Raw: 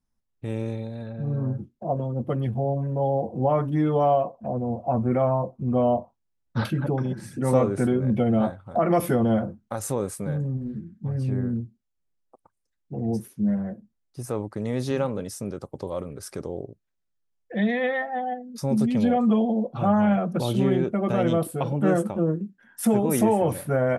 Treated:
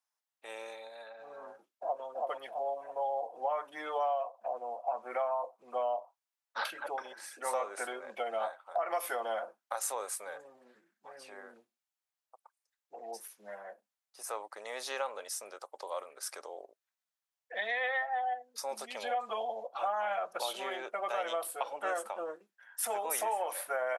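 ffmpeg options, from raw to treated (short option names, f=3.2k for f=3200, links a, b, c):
-filter_complex "[0:a]asplit=2[a][b];[b]afade=t=in:st=1.49:d=0.01,afade=t=out:st=2.04:d=0.01,aecho=0:1:330|660|990|1320|1650|1980:0.707946|0.318576|0.143359|0.0645116|0.0290302|0.0130636[c];[a][c]amix=inputs=2:normalize=0,highpass=f=680:w=0.5412,highpass=f=680:w=1.3066,acompressor=threshold=-30dB:ratio=4"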